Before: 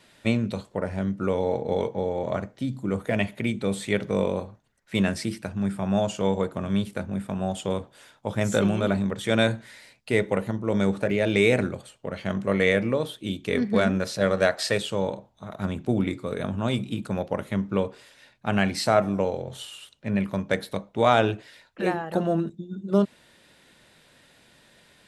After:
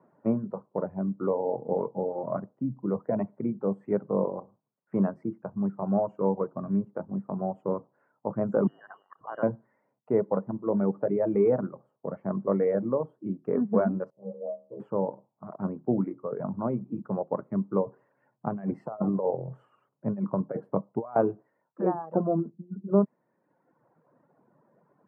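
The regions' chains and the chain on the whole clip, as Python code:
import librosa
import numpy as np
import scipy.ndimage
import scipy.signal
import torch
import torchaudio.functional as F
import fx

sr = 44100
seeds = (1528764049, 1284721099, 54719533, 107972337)

y = fx.chain(x, sr, fx.ellip_bandstop(low_hz=130.0, high_hz=1200.0, order=3, stop_db=40),
    fx.freq_invert(carrier_hz=3000), at=(8.67, 9.43))
y = fx.chain(y, sr, fx.cheby2_bandstop(low_hz=1700.0, high_hz=7300.0, order=4, stop_db=50),
    fx.low_shelf(hz=270.0, db=-4.5),
    fx.stiff_resonator(f0_hz=65.0, decay_s=0.59, stiffness=0.002), at=(14.1, 14.8))
y = fx.chain(y, sr, fx.peak_eq(hz=120.0, db=5.0, octaves=0.64),
    fx.over_compress(threshold_db=-25.0, ratio=-0.5), at=(17.86, 21.16))
y = fx.dereverb_blind(y, sr, rt60_s=1.2)
y = scipy.signal.sosfilt(scipy.signal.ellip(3, 1.0, 50, [140.0, 1100.0], 'bandpass', fs=sr, output='sos'), y)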